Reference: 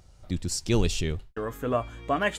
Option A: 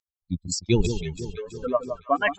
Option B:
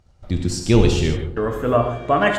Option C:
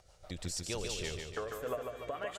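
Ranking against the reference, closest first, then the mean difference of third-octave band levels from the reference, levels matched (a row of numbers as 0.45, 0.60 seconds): B, C, A; 5.5, 8.5, 11.5 decibels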